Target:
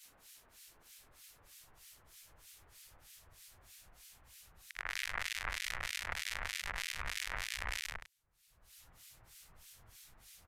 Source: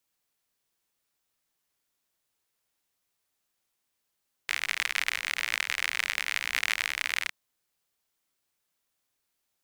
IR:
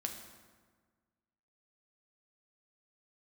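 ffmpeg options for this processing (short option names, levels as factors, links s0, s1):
-filter_complex "[0:a]afftfilt=real='re':imag='-im':win_size=8192:overlap=0.75,acompressor=mode=upward:threshold=0.00631:ratio=2.5,asetrate=40572,aresample=44100,acrossover=split=1700[s0][s1];[s0]aeval=exprs='val(0)*(1-1/2+1/2*cos(2*PI*3.2*n/s))':c=same[s2];[s1]aeval=exprs='val(0)*(1-1/2-1/2*cos(2*PI*3.2*n/s))':c=same[s3];[s2][s3]amix=inputs=2:normalize=0,aresample=32000,aresample=44100,adynamicequalizer=threshold=0.00251:dfrequency=1700:dqfactor=0.81:tfrequency=1700:tqfactor=0.81:attack=5:release=100:ratio=0.375:range=3.5:mode=cutabove:tftype=bell,alimiter=level_in=1.33:limit=0.0631:level=0:latency=1:release=94,volume=0.75,asubboost=boost=10:cutoff=90,volume=2.51"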